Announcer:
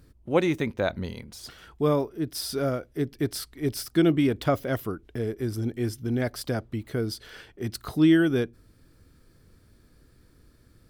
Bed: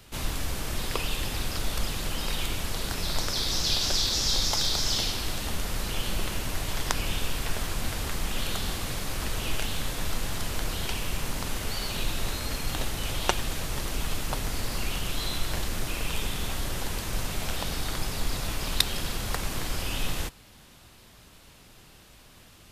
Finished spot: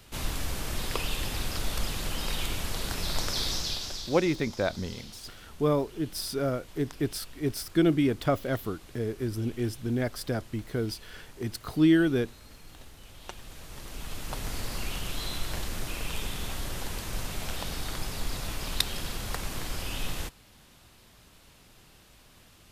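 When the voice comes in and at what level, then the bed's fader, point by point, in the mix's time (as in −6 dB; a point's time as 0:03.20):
3.80 s, −2.0 dB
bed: 0:03.46 −1.5 dB
0:04.34 −19.5 dB
0:13.11 −19.5 dB
0:14.49 −3.5 dB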